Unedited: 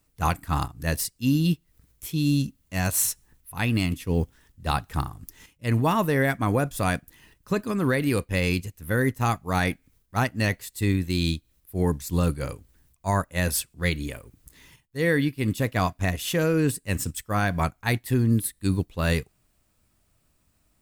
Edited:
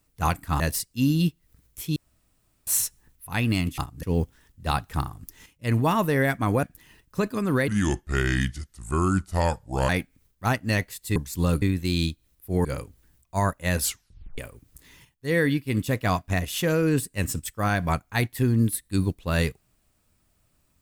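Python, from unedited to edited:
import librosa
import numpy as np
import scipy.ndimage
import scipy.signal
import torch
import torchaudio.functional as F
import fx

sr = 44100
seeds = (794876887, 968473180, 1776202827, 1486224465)

y = fx.edit(x, sr, fx.move(start_s=0.6, length_s=0.25, to_s=4.03),
    fx.room_tone_fill(start_s=2.21, length_s=0.71),
    fx.cut(start_s=6.63, length_s=0.33),
    fx.speed_span(start_s=8.01, length_s=1.59, speed=0.72),
    fx.move(start_s=11.9, length_s=0.46, to_s=10.87),
    fx.tape_stop(start_s=13.53, length_s=0.56), tone=tone)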